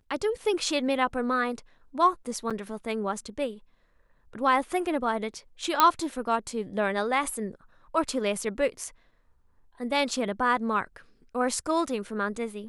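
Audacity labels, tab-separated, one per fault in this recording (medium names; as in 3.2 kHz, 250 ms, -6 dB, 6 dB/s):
2.500000	2.510000	dropout 6.4 ms
5.800000	5.800000	pop -4 dBFS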